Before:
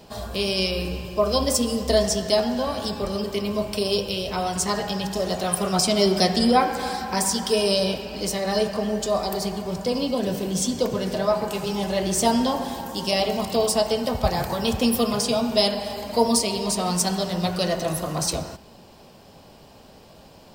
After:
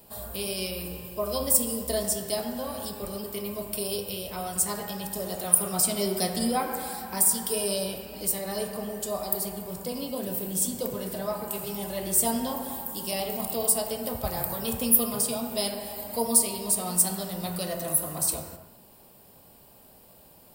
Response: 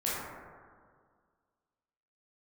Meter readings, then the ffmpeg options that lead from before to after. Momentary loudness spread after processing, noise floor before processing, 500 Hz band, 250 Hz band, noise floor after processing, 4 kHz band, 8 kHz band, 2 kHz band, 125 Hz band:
12 LU, -49 dBFS, -8.5 dB, -8.5 dB, -54 dBFS, -9.5 dB, +2.5 dB, -9.0 dB, -8.5 dB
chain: -filter_complex "[0:a]aexciter=amount=11.8:drive=1.3:freq=8500,asplit=2[s0][s1];[1:a]atrim=start_sample=2205,afade=t=out:st=0.31:d=0.01,atrim=end_sample=14112,asetrate=48510,aresample=44100[s2];[s1][s2]afir=irnorm=-1:irlink=0,volume=0.266[s3];[s0][s3]amix=inputs=2:normalize=0,volume=0.282"

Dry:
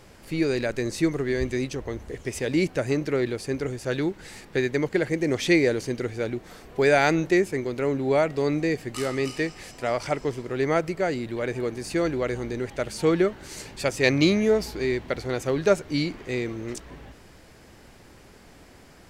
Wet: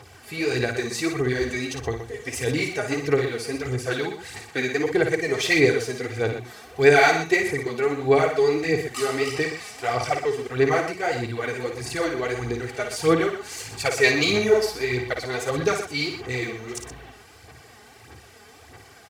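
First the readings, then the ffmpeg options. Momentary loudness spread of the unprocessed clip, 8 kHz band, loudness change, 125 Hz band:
11 LU, +5.0 dB, +2.0 dB, +0.5 dB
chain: -af "highpass=f=83:w=0.5412,highpass=f=83:w=1.3066,equalizer=f=330:t=o:w=0.77:g=-10.5,aecho=1:1:2.6:0.71,aphaser=in_gain=1:out_gain=1:delay=4.9:decay=0.63:speed=1.6:type=sinusoidal,aecho=1:1:55.39|122.4:0.447|0.316"

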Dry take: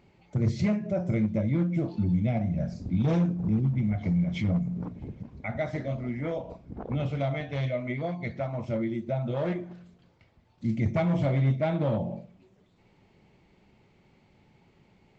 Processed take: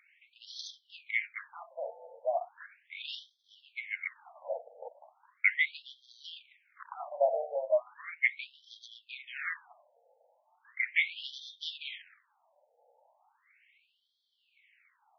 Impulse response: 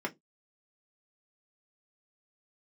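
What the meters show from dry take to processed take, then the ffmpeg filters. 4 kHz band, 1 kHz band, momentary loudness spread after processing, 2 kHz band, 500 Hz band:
+7.0 dB, -2.5 dB, 20 LU, +8.5 dB, -4.0 dB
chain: -af "adynamicsmooth=sensitivity=6.5:basefreq=1800,highshelf=f=1600:t=q:w=1.5:g=7,afftfilt=real='re*between(b*sr/1024,620*pow(4500/620,0.5+0.5*sin(2*PI*0.37*pts/sr))/1.41,620*pow(4500/620,0.5+0.5*sin(2*PI*0.37*pts/sr))*1.41)':imag='im*between(b*sr/1024,620*pow(4500/620,0.5+0.5*sin(2*PI*0.37*pts/sr))/1.41,620*pow(4500/620,0.5+0.5*sin(2*PI*0.37*pts/sr))*1.41)':win_size=1024:overlap=0.75,volume=2.11"

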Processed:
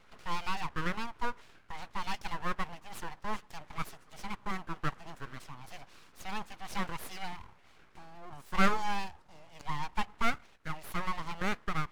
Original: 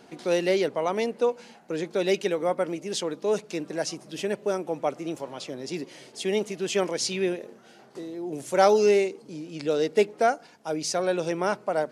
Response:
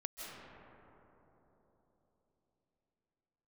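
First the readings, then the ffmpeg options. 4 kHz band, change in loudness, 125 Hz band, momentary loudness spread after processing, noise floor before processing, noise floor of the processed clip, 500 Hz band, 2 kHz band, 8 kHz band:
-9.0 dB, -10.5 dB, -3.0 dB, 17 LU, -53 dBFS, -60 dBFS, -22.5 dB, -3.0 dB, -15.0 dB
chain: -filter_complex "[0:a]acrossover=split=480 2300:gain=0.0891 1 0.224[s0][s1][s2];[s0][s1][s2]amix=inputs=3:normalize=0,aeval=exprs='abs(val(0))':c=same,volume=0.841"

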